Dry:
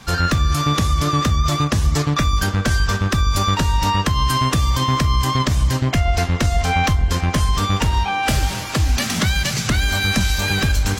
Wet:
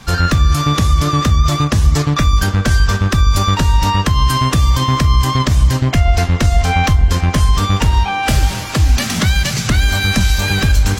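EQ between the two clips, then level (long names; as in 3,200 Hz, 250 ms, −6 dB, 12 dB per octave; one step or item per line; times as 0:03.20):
low-shelf EQ 110 Hz +5 dB
+2.5 dB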